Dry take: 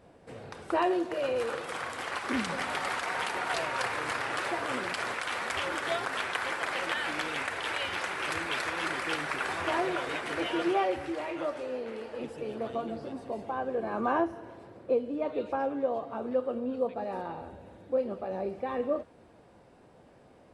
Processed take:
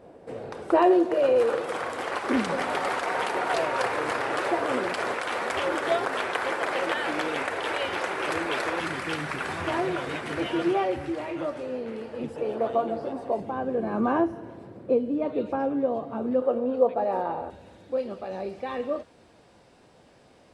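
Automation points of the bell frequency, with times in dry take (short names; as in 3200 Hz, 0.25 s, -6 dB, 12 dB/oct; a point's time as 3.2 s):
bell +10 dB 2.3 oct
450 Hz
from 8.8 s 140 Hz
from 12.36 s 690 Hz
from 13.4 s 180 Hz
from 16.42 s 660 Hz
from 17.5 s 5100 Hz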